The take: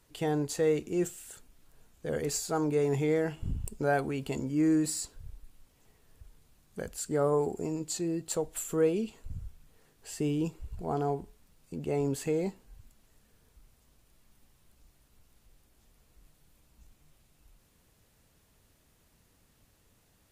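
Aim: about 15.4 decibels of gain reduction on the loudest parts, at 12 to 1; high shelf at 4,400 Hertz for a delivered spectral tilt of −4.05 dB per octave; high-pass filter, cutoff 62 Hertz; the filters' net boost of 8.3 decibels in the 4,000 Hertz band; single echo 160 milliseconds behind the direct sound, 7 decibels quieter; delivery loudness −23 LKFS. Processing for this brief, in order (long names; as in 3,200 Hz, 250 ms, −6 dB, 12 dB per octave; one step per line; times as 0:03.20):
high-pass filter 62 Hz
parametric band 4,000 Hz +8.5 dB
high-shelf EQ 4,400 Hz +3 dB
downward compressor 12 to 1, threshold −38 dBFS
single-tap delay 160 ms −7 dB
level +19 dB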